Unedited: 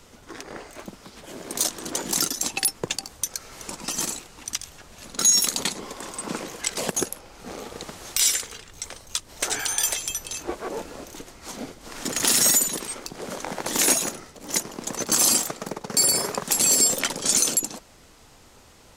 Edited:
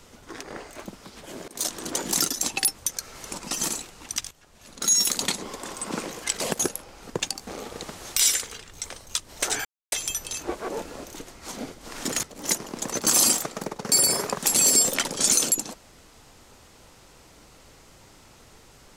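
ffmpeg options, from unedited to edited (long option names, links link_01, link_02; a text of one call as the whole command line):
ffmpeg -i in.wav -filter_complex "[0:a]asplit=9[link_01][link_02][link_03][link_04][link_05][link_06][link_07][link_08][link_09];[link_01]atrim=end=1.48,asetpts=PTS-STARTPTS,afade=type=out:start_time=1.476:duration=0.004:curve=hsin:silence=0.0891251[link_10];[link_02]atrim=start=1.48:end=2.782,asetpts=PTS-STARTPTS,afade=type=in:duration=0.26:silence=0.0891251[link_11];[link_03]atrim=start=3.148:end=4.68,asetpts=PTS-STARTPTS,afade=type=out:start_time=1.528:duration=0.004:curve=hsin:silence=0.199526[link_12];[link_04]atrim=start=4.68:end=7.472,asetpts=PTS-STARTPTS,afade=type=in:duration=0.93:silence=0.199526[link_13];[link_05]atrim=start=2.778:end=3.152[link_14];[link_06]atrim=start=7.468:end=9.65,asetpts=PTS-STARTPTS,afade=type=out:start_time=2.178:duration=0.004:curve=hsin[link_15];[link_07]atrim=start=9.65:end=9.92,asetpts=PTS-STARTPTS,volume=0[link_16];[link_08]atrim=start=9.92:end=12.232,asetpts=PTS-STARTPTS,afade=type=in:duration=0.004:curve=hsin[link_17];[link_09]atrim=start=14.278[link_18];[link_10][link_11]concat=n=2:v=0:a=1[link_19];[link_12][link_13]concat=n=2:v=0:a=1[link_20];[link_19][link_20]acrossfade=duration=0.004:curve1=hsin:curve2=hsin[link_21];[link_21][link_14]acrossfade=duration=0.004:curve1=hsin:curve2=hsin[link_22];[link_15][link_16][link_17]concat=n=3:v=0:a=1[link_23];[link_22][link_23]acrossfade=duration=0.004:curve1=hsin:curve2=hsin[link_24];[link_24][link_18]acrossfade=duration=0.004:curve1=hsin:curve2=hsin" out.wav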